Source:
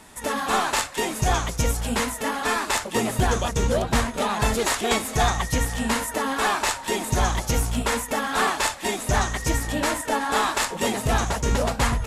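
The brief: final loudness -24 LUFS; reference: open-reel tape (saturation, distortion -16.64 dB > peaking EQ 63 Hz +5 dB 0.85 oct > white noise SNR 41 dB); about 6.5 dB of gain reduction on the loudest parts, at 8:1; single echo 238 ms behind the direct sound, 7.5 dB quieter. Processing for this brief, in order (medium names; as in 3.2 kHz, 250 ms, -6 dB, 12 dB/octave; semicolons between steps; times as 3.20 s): compression 8:1, threshold -23 dBFS; delay 238 ms -7.5 dB; saturation -21 dBFS; peaking EQ 63 Hz +5 dB 0.85 oct; white noise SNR 41 dB; trim +4.5 dB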